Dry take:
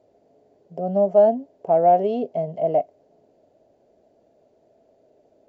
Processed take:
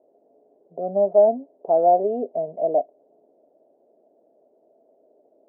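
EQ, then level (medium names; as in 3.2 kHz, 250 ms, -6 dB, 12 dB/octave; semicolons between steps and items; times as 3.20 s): Butterworth band-pass 460 Hz, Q 0.79; 0.0 dB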